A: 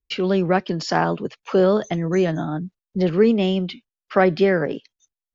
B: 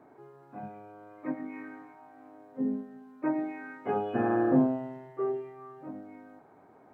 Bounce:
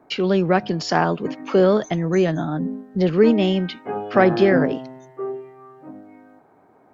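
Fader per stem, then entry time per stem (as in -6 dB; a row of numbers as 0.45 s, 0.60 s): +1.0 dB, +2.5 dB; 0.00 s, 0.00 s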